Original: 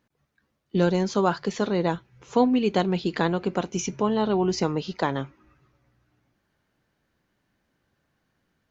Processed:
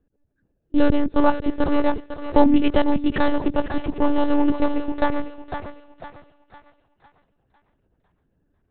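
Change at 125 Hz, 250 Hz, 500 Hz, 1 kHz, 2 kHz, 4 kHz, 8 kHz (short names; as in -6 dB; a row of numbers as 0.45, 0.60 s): -4.5 dB, +5.0 dB, +1.5 dB, +3.0 dB, +3.0 dB, -1.5 dB, n/a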